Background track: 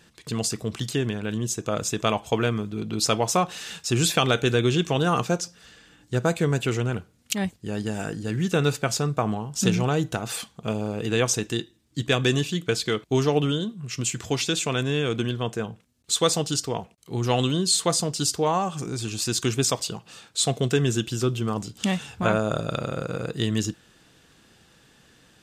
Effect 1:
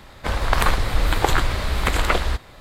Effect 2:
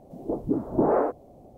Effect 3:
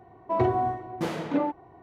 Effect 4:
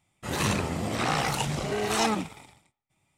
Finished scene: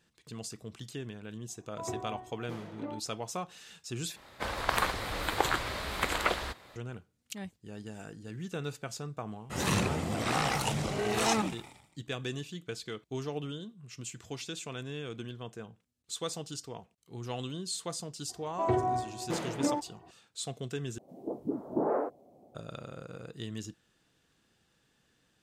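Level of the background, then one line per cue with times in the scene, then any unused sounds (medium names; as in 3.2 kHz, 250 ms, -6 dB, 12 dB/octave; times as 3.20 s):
background track -15 dB
1.48 s: add 3 -14.5 dB
4.16 s: replace with 1 -7.5 dB + high-pass 230 Hz 6 dB/octave
9.27 s: add 4 -3 dB
18.29 s: add 3 -4.5 dB
20.98 s: replace with 2 -7.5 dB + high-pass 170 Hz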